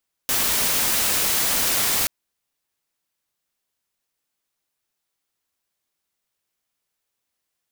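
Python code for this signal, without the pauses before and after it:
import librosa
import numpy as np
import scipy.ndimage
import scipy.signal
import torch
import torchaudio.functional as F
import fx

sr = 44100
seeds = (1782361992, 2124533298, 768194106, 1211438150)

y = fx.noise_colour(sr, seeds[0], length_s=1.78, colour='white', level_db=-21.0)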